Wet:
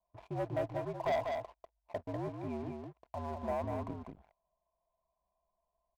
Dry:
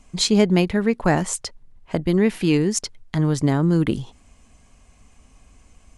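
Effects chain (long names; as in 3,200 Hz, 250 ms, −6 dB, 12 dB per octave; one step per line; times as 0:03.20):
formant resonators in series a
frequency shifter −66 Hz
leveller curve on the samples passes 3
single-tap delay 195 ms −5 dB
level −8 dB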